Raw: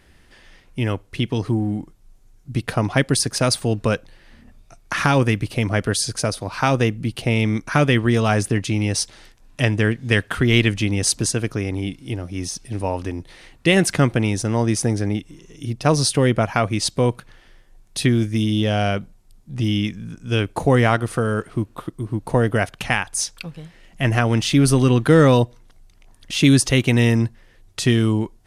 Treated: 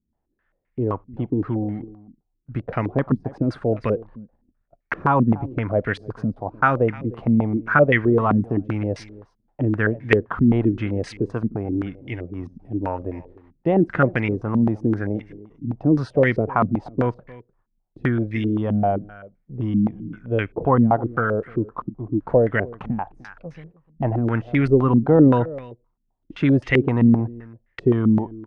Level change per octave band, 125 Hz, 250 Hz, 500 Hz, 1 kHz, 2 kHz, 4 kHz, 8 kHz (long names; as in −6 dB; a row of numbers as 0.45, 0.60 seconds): −3.5 dB, +0.5 dB, 0.0 dB, 0.0 dB, −3.0 dB, −18.5 dB, below −30 dB